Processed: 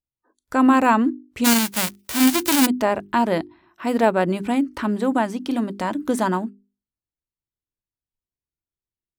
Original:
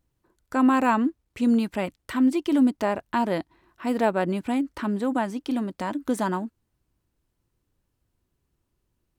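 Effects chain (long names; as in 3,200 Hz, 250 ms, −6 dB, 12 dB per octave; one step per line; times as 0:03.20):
0:01.44–0:02.65: spectral envelope flattened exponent 0.1
noise reduction from a noise print of the clip's start 27 dB
mains-hum notches 50/100/150/200/250/300/350/400 Hz
boost into a limiter +8 dB
level −3 dB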